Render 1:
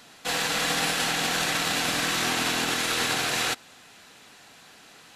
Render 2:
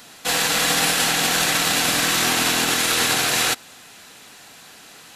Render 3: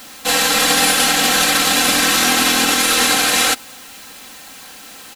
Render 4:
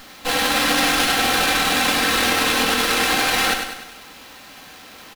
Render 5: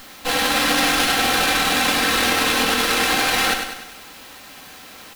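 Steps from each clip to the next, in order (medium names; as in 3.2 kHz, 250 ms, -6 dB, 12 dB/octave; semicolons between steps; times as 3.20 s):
treble shelf 8.2 kHz +9 dB; trim +5 dB
comb 3.8 ms, depth 72%; in parallel at -4.5 dB: word length cut 6-bit, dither triangular; on the sum: trim -1 dB
feedback delay 99 ms, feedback 50%, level -6 dB; sliding maximum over 5 samples; trim -3.5 dB
word length cut 8-bit, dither triangular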